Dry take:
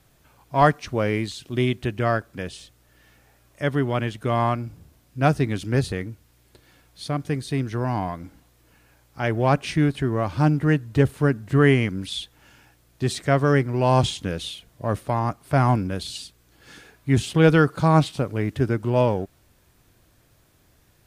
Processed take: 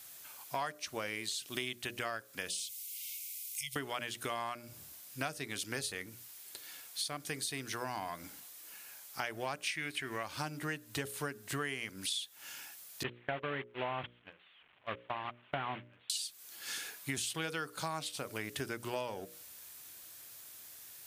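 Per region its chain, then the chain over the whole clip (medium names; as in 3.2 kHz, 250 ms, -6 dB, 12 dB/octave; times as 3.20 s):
2.50–3.76 s: brick-wall FIR band-stop 170–2000 Hz + compression 2:1, threshold -49 dBFS + treble shelf 3.4 kHz +8.5 dB
9.67–10.23 s: peaking EQ 2.2 kHz +11 dB 0.89 oct + tape noise reduction on one side only encoder only
13.03–16.10 s: one-bit delta coder 16 kbps, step -26 dBFS + gate -22 dBFS, range -32 dB
whole clip: tilt EQ +4.5 dB/octave; hum notches 60/120/180/240/300/360/420/480/540/600 Hz; compression 8:1, threshold -35 dBFS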